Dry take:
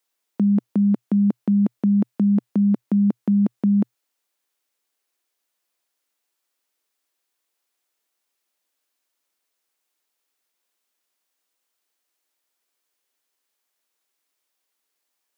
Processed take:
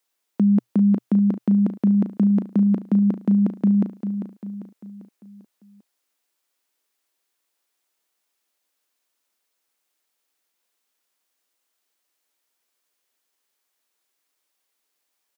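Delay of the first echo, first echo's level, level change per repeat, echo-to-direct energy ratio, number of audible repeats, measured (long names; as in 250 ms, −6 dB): 396 ms, −9.0 dB, −6.5 dB, −8.0 dB, 4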